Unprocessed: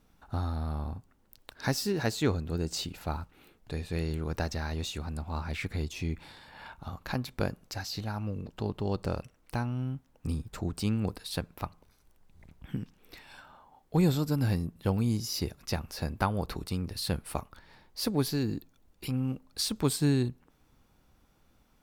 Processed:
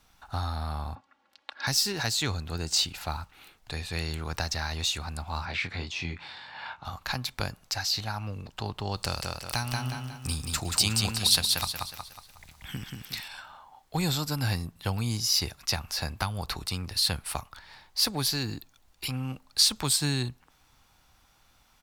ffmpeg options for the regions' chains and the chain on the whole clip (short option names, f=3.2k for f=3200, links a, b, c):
-filter_complex "[0:a]asettb=1/sr,asplit=3[a][b][c];[a]atrim=end=0.954[d];[b]atrim=start=0.95:end=1.67,asetpts=PTS-STARTPTS,afade=t=in:d=0.004:c=qsin,afade=t=out:st=0.716:d=0.004:c=qsin,highpass=270,lowpass=3.1k,aecho=1:1:3.6:0.78,atrim=end_sample=31752[e];[c]atrim=start=1.666[f];[d][e]acrossfade=d=0.004:c1=hsin:c2=qsin[g];[g][f]acrossfade=d=0.004:c1=qsin:c2=hsin,asettb=1/sr,asplit=3[h][i][j];[h]atrim=end=5.454[k];[i]atrim=start=5.45:end=6.85,asetpts=PTS-STARTPTS,afade=t=in:d=0.004:c=qsin,afade=t=out:st=1.396:d=0.004:c=qsin,highpass=110,lowpass=4k,asplit=2[l][m];[m]adelay=23,volume=-6dB[n];[l][n]amix=inputs=2:normalize=0,atrim=end_sample=61740[o];[j]atrim=start=6.846[p];[k][o]acrossfade=d=0.004:c1=hsin:c2=qsin[q];[q][p]acrossfade=d=0.004:c1=qsin:c2=hsin,asettb=1/sr,asplit=3[r][s][t];[r]atrim=end=8.964[u];[s]atrim=start=8.96:end=13.28,asetpts=PTS-STARTPTS,afade=t=in:d=0.004:c=qsin,afade=t=out:st=4.316:d=0.004:c=qsin,highshelf=f=2.7k:g=10,aecho=1:1:182|364|546|728|910:0.631|0.259|0.106|0.0435|0.0178,atrim=end_sample=190512[v];[t]atrim=start=13.276[w];[u][v]acrossfade=d=0.004:c1=hsin:c2=qsin[x];[x][w]acrossfade=d=0.004:c1=qsin:c2=hsin,firequalizer=gain_entry='entry(110,0);entry(190,-5);entry(460,-4);entry(760,6);entry(4200,11);entry(14000,6)':delay=0.05:min_phase=1,acrossover=split=230|3000[y][z][aa];[z]acompressor=threshold=-30dB:ratio=6[ab];[y][ab][aa]amix=inputs=3:normalize=0"